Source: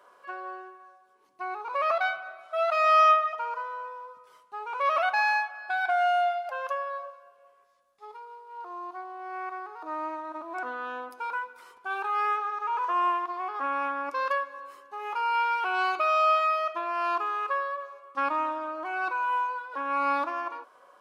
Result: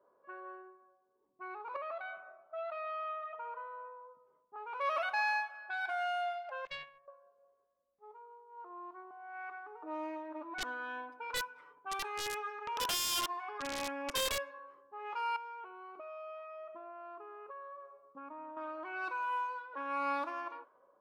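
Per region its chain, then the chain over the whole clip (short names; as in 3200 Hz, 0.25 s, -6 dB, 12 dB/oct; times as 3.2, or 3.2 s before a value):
1.76–4.56 steep low-pass 4600 Hz 96 dB/oct + compressor 3:1, threshold -29 dBFS + high shelf 2400 Hz -11 dB
6.65–7.08 self-modulated delay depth 0.51 ms + gate -35 dBFS, range -17 dB
9.1–14.51 bell 4400 Hz -4 dB 0.41 oct + comb 6.8 ms, depth 98% + wrapped overs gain 22 dB
15.36–18.57 tilt shelf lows +6.5 dB, about 710 Hz + comb 4.4 ms, depth 38% + compressor 4:1, threshold -37 dBFS
whole clip: notch 730 Hz, Q 12; low-pass opened by the level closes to 610 Hz, open at -26 dBFS; bell 1200 Hz -2.5 dB; gain -6.5 dB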